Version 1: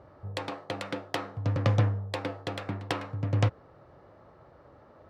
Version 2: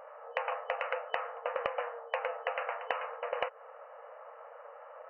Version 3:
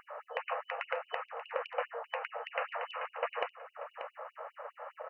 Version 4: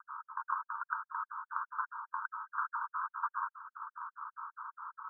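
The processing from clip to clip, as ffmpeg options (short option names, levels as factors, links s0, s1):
-af "equalizer=f=1200:t=o:w=0.77:g=2.5,afftfilt=real='re*between(b*sr/4096,450,3000)':imag='im*between(b*sr/4096,450,3000)':win_size=4096:overlap=0.75,acompressor=threshold=0.0158:ratio=10,volume=2.11"
-af "aecho=1:1:585:0.126,alimiter=level_in=1.06:limit=0.0631:level=0:latency=1:release=396,volume=0.944,afftfilt=real='re*gte(b*sr/1024,210*pow(2800/210,0.5+0.5*sin(2*PI*4.9*pts/sr)))':imag='im*gte(b*sr/1024,210*pow(2800/210,0.5+0.5*sin(2*PI*4.9*pts/sr)))':win_size=1024:overlap=0.75,volume=2.11"
-af "asuperpass=centerf=1200:order=20:qfactor=1.8,volume=1.78"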